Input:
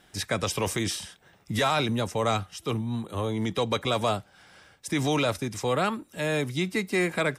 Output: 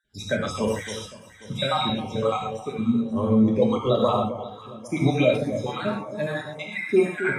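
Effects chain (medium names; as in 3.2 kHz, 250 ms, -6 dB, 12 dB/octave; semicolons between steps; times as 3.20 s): random holes in the spectrogram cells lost 52%; on a send: echo whose repeats swap between lows and highs 268 ms, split 1 kHz, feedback 67%, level -6.5 dB; on the sum: gated-style reverb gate 160 ms flat, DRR -2 dB; spectral contrast expander 1.5:1; trim +4 dB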